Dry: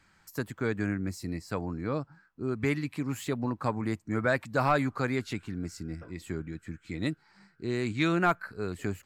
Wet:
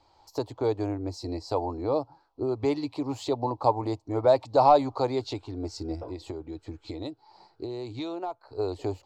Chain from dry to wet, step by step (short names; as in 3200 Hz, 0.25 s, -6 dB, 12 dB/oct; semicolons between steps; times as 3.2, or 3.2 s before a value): recorder AGC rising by 11 dB/s; EQ curve 120 Hz 0 dB, 190 Hz -21 dB, 280 Hz +2 dB, 880 Hz +13 dB, 1600 Hz -18 dB, 4300 Hz +5 dB, 10000 Hz -17 dB; 5.99–8.52 compressor 5:1, threshold -33 dBFS, peak gain reduction 17 dB; dynamic EQ 6900 Hz, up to +4 dB, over -51 dBFS, Q 0.84